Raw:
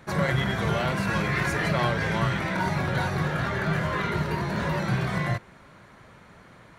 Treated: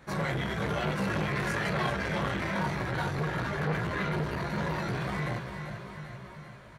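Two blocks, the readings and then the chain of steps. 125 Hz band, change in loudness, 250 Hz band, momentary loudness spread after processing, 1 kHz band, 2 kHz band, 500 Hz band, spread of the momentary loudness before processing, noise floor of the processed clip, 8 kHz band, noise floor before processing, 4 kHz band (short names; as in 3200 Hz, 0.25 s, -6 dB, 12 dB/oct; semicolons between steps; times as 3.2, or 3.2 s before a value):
-5.5 dB, -5.0 dB, -4.5 dB, 11 LU, -4.5 dB, -5.0 dB, -4.0 dB, 3 LU, -48 dBFS, -5.0 dB, -52 dBFS, -5.0 dB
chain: feedback echo 0.392 s, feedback 57%, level -9.5 dB; chorus voices 4, 1 Hz, delay 17 ms, depth 3.2 ms; core saturation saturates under 700 Hz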